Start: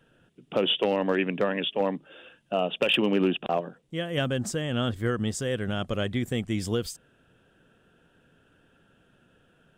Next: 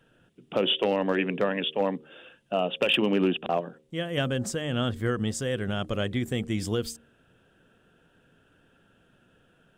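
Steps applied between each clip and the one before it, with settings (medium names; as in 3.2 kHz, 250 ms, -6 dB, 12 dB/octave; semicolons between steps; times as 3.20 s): de-hum 77.05 Hz, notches 7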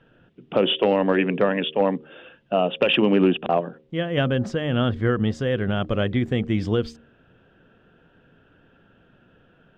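distance through air 240 m; trim +6.5 dB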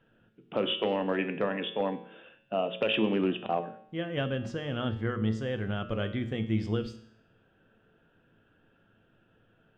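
feedback comb 110 Hz, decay 0.71 s, harmonics all, mix 70%; de-hum 60.61 Hz, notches 10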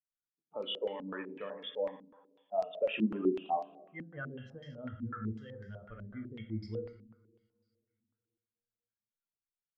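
expander on every frequency bin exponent 2; two-slope reverb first 0.91 s, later 2.6 s, from -18 dB, DRR 4.5 dB; step-sequenced low-pass 8 Hz 240–4800 Hz; trim -9 dB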